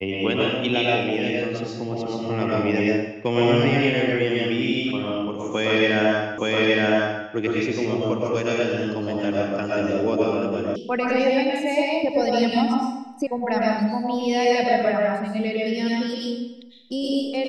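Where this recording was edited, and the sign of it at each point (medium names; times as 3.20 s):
6.38 s: repeat of the last 0.87 s
10.76 s: sound stops dead
13.27 s: sound stops dead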